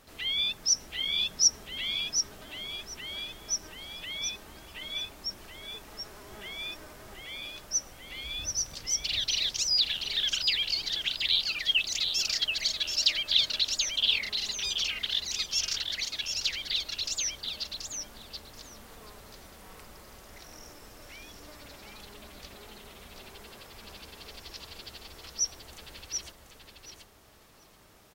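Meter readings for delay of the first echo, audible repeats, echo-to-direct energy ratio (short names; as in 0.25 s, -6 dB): 0.731 s, 2, -5.5 dB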